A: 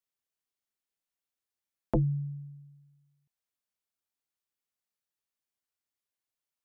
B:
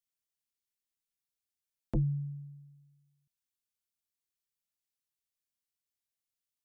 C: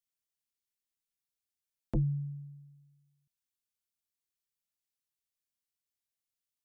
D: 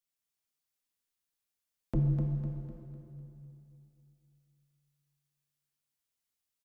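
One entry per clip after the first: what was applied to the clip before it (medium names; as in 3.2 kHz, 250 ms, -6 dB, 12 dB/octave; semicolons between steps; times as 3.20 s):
peaking EQ 750 Hz -14 dB 2.5 oct
no audible change
on a send: feedback delay 251 ms, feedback 46%, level -5.5 dB; on the sum: plate-style reverb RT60 2.7 s, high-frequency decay 0.9×, DRR 1.5 dB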